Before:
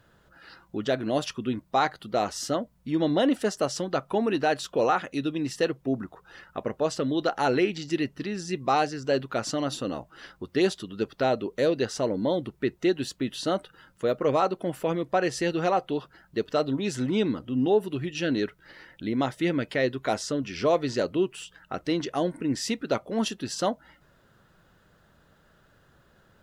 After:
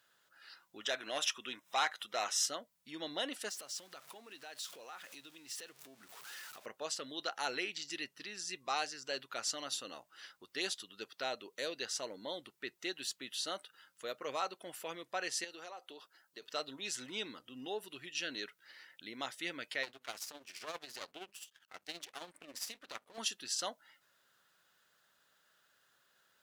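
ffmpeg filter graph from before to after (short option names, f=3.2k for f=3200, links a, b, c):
-filter_complex "[0:a]asettb=1/sr,asplit=3[a][b][c];[a]atrim=end=0.814[d];[b]atrim=start=0.81:end=2.46,asetpts=PTS-STARTPTS,afade=t=in:d=0.004:c=qsin,afade=t=out:st=1.646:d=0.004:c=qsin,acompressor=mode=upward:threshold=-37dB:ratio=2.5:attack=3.2:release=140:knee=2.83:detection=peak,asplit=2[e][f];[f]highpass=f=720:p=1,volume=12dB,asoftclip=type=tanh:threshold=-11.5dB[g];[e][g]amix=inputs=2:normalize=0,lowpass=f=5.9k:p=1,volume=-6dB,asuperstop=centerf=4500:order=4:qfactor=5.7[h];[c]atrim=start=2.456[i];[d][h]acrossfade=d=0.004:c1=hsin:c2=qsin[j];[j][i]acrossfade=d=0.004:c1=qsin:c2=hsin,asettb=1/sr,asplit=3[k][l][m];[k]atrim=end=3.494[n];[l]atrim=start=3.49:end=6.66,asetpts=PTS-STARTPTS,afade=t=in:d=0.004:c=qsin,afade=t=out:st=3.166:d=0.004:c=qsin,aeval=exprs='val(0)+0.5*0.0119*sgn(val(0))':c=same,acompressor=threshold=-40dB:ratio=2.5:attack=3.2:release=140:knee=1:detection=peak[o];[m]atrim=start=6.656[p];[n][o]acrossfade=d=0.004:c1=hsin:c2=qsin[q];[q][p]acrossfade=d=0.004:c1=qsin:c2=hsin,asettb=1/sr,asplit=3[r][s][t];[r]atrim=end=15.444[u];[s]atrim=start=15.44:end=16.42,asetpts=PTS-STARTPTS,afade=t=in:d=0.004:c=qsin,afade=t=out:st=0.976:d=0.004:c=qsin,highpass=270,acompressor=threshold=-28dB:ratio=10:attack=3.2:release=140:knee=1:detection=peak,equalizer=f=2.3k:w=0.76:g=-4.5[v];[t]atrim=start=16.416[w];[u][v]acrossfade=d=0.004:c1=hsin:c2=qsin[x];[x][w]acrossfade=d=0.004:c1=qsin:c2=hsin,asettb=1/sr,asplit=3[y][z][aa];[y]atrim=end=19.834[ab];[z]atrim=start=19.83:end=23.18,asetpts=PTS-STARTPTS,afade=t=in:d=0.004:c=qsin,afade=t=out:st=3.346:d=0.004:c=qsin,bandreject=f=50:t=h:w=6,bandreject=f=100:t=h:w=6,bandreject=f=150:t=h:w=6,bandreject=f=200:t=h:w=6,bandreject=f=250:t=h:w=6,aeval=exprs='max(val(0),0)':c=same,tremolo=f=15:d=0.64[ac];[aa]atrim=start=23.176[ad];[ab][ac]acrossfade=d=0.004:c1=hsin:c2=qsin[ae];[ae][ad]acrossfade=d=0.004:c1=qsin:c2=hsin,lowpass=f=4k:p=1,aderivative,volume=5dB"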